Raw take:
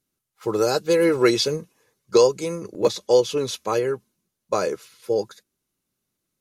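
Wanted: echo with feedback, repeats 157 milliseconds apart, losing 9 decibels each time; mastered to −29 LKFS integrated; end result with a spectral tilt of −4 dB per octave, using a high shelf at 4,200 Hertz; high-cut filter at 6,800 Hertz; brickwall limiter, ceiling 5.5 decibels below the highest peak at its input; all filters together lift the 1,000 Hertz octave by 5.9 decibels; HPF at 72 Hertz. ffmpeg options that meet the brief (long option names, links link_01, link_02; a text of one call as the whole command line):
ffmpeg -i in.wav -af "highpass=72,lowpass=6800,equalizer=frequency=1000:width_type=o:gain=7,highshelf=frequency=4200:gain=4.5,alimiter=limit=-9dB:level=0:latency=1,aecho=1:1:157|314|471|628:0.355|0.124|0.0435|0.0152,volume=-7dB" out.wav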